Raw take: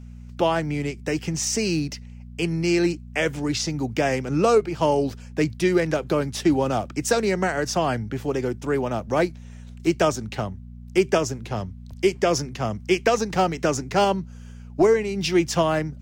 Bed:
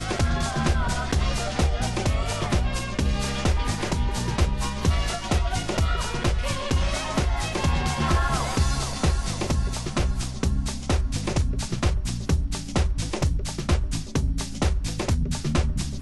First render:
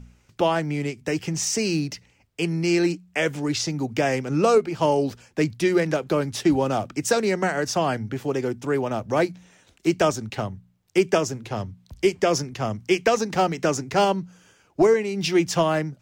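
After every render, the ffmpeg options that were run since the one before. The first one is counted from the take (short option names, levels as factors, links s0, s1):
-af "bandreject=f=60:t=h:w=4,bandreject=f=120:t=h:w=4,bandreject=f=180:t=h:w=4,bandreject=f=240:t=h:w=4"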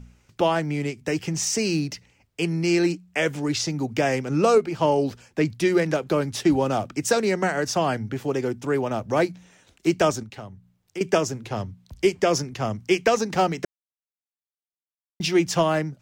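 -filter_complex "[0:a]asettb=1/sr,asplit=3[s0][s1][s2];[s0]atrim=end=4.744[s3];[s1]atrim=start=4.74:end=5.45,asetpts=PTS-STARTPTS,afade=t=in:d=0.004:c=qsin,afade=t=out:st=0.706:d=0.004:c=qsin,acrossover=split=4600[s4][s5];[s5]acompressor=threshold=0.00398:ratio=4:attack=1:release=60[s6];[s4][s6]amix=inputs=2:normalize=0[s7];[s2]atrim=start=5.446[s8];[s3][s7]acrossfade=d=0.004:c1=hsin:c2=qsin[s9];[s9][s8]acrossfade=d=0.004:c1=qsin:c2=hsin,asettb=1/sr,asplit=3[s10][s11][s12];[s10]atrim=end=10.234[s13];[s11]atrim=start=10.23:end=11.01,asetpts=PTS-STARTPTS,afade=t=in:d=0.004:c=qsin,afade=t=out:st=0.776:d=0.004:c=qsin,acompressor=threshold=0.00251:ratio=1.5:attack=3.2:release=140:knee=1:detection=peak[s14];[s12]atrim=start=11.006[s15];[s13][s14]acrossfade=d=0.004:c1=hsin:c2=qsin[s16];[s16][s15]acrossfade=d=0.004:c1=qsin:c2=hsin,asplit=3[s17][s18][s19];[s17]atrim=end=13.65,asetpts=PTS-STARTPTS,afade=t=out:st=13.646:d=0.004:c=hsin[s20];[s18]atrim=start=13.65:end=15.2,asetpts=PTS-STARTPTS,volume=0[s21];[s19]atrim=start=15.2,asetpts=PTS-STARTPTS,afade=t=in:d=0.004:c=hsin[s22];[s20][s21][s22]concat=n=3:v=0:a=1"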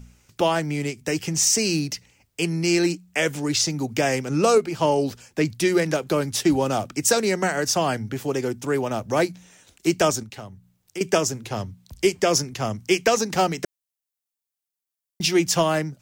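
-af "highshelf=f=5200:g=11"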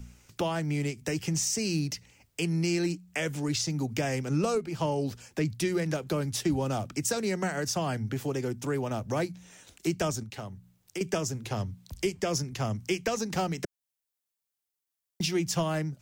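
-filter_complex "[0:a]acrossover=split=180[s0][s1];[s1]acompressor=threshold=0.0158:ratio=2[s2];[s0][s2]amix=inputs=2:normalize=0"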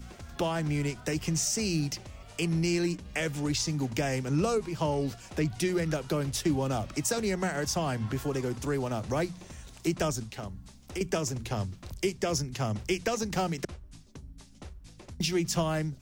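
-filter_complex "[1:a]volume=0.075[s0];[0:a][s0]amix=inputs=2:normalize=0"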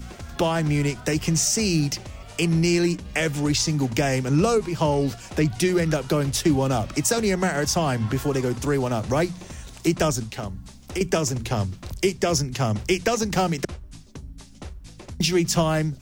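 -af "volume=2.37"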